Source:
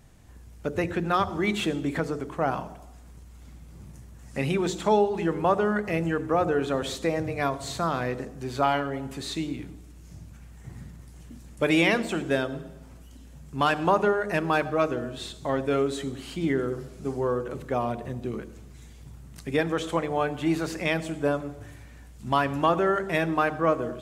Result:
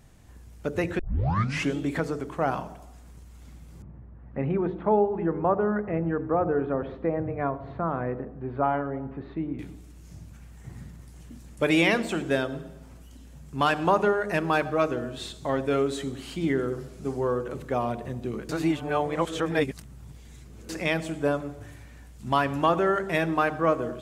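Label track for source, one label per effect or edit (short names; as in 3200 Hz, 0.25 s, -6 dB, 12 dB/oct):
0.990000	0.990000	tape start 0.78 s
3.820000	9.590000	Bessel low-pass 1200 Hz, order 4
18.490000	20.690000	reverse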